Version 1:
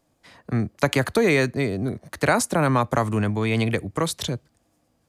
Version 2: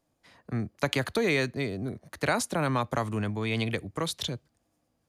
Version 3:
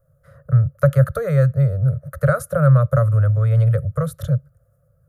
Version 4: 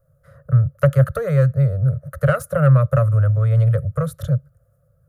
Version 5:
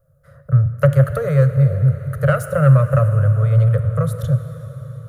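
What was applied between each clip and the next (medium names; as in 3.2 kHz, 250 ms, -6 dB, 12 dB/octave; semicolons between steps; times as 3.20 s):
dynamic bell 3.5 kHz, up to +6 dB, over -40 dBFS, Q 1.3; band-stop 8 kHz, Q 18; trim -7.5 dB
resonant low shelf 220 Hz +10 dB, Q 3; in parallel at -2 dB: compression, threshold -27 dBFS, peak gain reduction 13 dB; on the sum: FFT filter 140 Hz 0 dB, 200 Hz -24 dB, 350 Hz -20 dB, 550 Hz +13 dB, 880 Hz -24 dB, 1.3 kHz +7 dB, 2.4 kHz -23 dB, 4.7 kHz -22 dB, 7.7 kHz -13 dB, 12 kHz 0 dB; trim +3.5 dB
self-modulated delay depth 0.099 ms
plate-style reverb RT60 4.8 s, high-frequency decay 0.9×, DRR 9 dB; trim +1 dB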